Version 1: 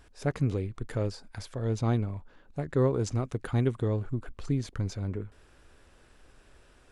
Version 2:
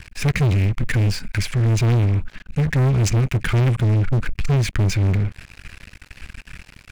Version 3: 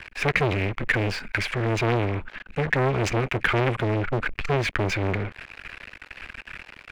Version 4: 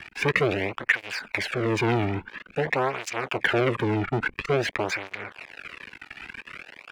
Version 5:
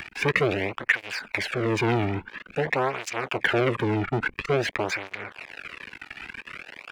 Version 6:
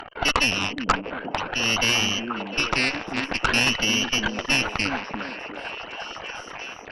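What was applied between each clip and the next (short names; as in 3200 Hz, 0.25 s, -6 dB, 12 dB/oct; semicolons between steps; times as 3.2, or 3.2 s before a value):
EQ curve 190 Hz 0 dB, 360 Hz -19 dB, 720 Hz -22 dB, 2400 Hz +7 dB, 3600 Hz -7 dB; sample leveller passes 5; gain +4.5 dB
three-band isolator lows -16 dB, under 330 Hz, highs -16 dB, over 3400 Hz; gain +5 dB
tape flanging out of phase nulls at 0.49 Hz, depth 2 ms; gain +2.5 dB
upward compressor, threshold -34 dBFS
inverted band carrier 3100 Hz; added harmonics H 6 -13 dB, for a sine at -7.5 dBFS; delay with a stepping band-pass 0.352 s, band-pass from 250 Hz, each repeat 0.7 oct, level 0 dB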